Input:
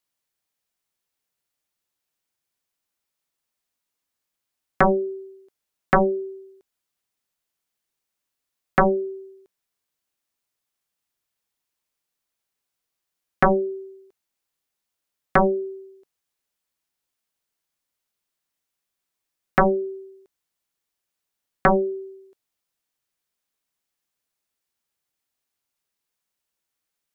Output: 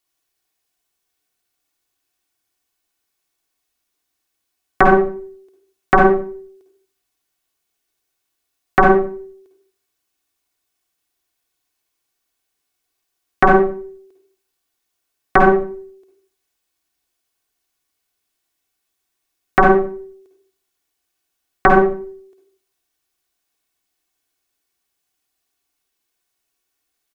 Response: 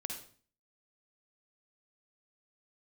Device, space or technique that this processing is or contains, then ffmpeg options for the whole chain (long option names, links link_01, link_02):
microphone above a desk: -filter_complex "[0:a]aecho=1:1:2.7:0.54[link_01];[1:a]atrim=start_sample=2205[link_02];[link_01][link_02]afir=irnorm=-1:irlink=0,volume=6.5dB"